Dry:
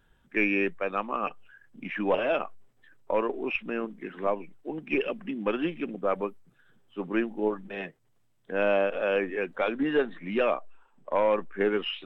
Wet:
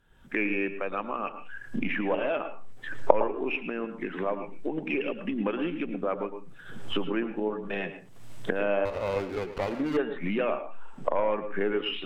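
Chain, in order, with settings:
camcorder AGC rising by 50 dB per second
treble cut that deepens with the level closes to 2,900 Hz, closed at −20 dBFS
on a send at −10 dB: convolution reverb RT60 0.30 s, pre-delay 108 ms
0:08.85–0:09.97: on the sum: windowed peak hold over 17 samples
level −3 dB

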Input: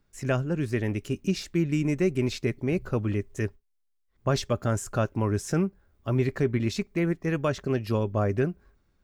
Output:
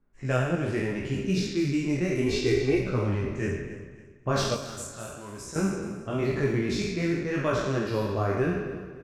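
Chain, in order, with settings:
peak hold with a decay on every bin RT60 1.30 s
low-pass that shuts in the quiet parts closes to 1,600 Hz, open at −18.5 dBFS
0:02.26–0:02.80: comb filter 2.6 ms, depth 87%
0:04.54–0:05.56: first-order pre-emphasis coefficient 0.8
multi-voice chorus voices 2, 0.73 Hz, delay 19 ms, depth 4.8 ms
repeating echo 278 ms, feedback 37%, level −15 dB

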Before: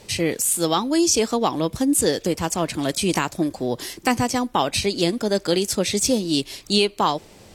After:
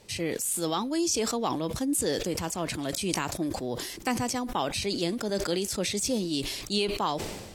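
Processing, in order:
level that may fall only so fast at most 43 dB per second
level −9 dB

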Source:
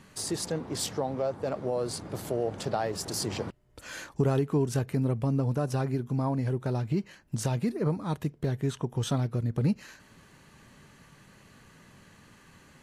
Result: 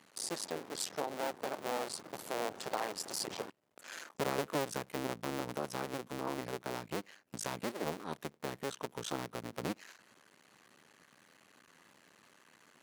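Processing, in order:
sub-harmonics by changed cycles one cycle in 2, muted
high-pass filter 180 Hz 12 dB per octave
low-shelf EQ 280 Hz −8.5 dB
level −2.5 dB

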